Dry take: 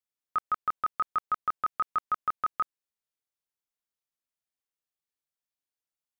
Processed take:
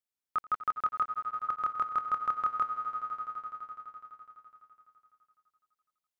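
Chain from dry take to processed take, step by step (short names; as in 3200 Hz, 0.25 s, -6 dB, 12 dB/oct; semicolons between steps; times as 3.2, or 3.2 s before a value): 1–1.49 auto swell 0.104 s; swelling echo 84 ms, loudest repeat 5, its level -14.5 dB; gain -2.5 dB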